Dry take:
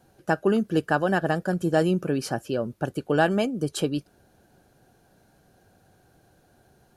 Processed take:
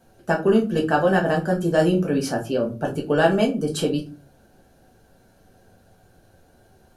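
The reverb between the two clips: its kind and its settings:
rectangular room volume 120 cubic metres, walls furnished, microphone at 1.6 metres

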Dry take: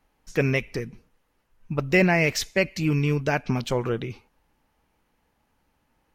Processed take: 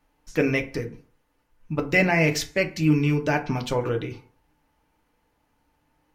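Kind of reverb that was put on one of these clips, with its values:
feedback delay network reverb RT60 0.41 s, low-frequency decay 0.95×, high-frequency decay 0.5×, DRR 4 dB
level −1 dB

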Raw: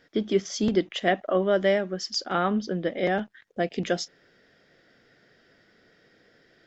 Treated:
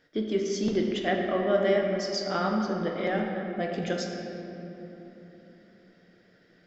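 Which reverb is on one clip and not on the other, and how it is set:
rectangular room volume 210 cubic metres, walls hard, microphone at 0.45 metres
level −5 dB

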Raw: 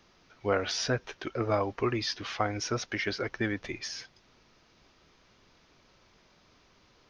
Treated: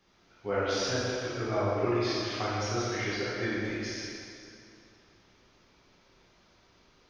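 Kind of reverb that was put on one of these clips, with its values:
dense smooth reverb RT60 2.6 s, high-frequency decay 0.8×, DRR −8.5 dB
level −9 dB

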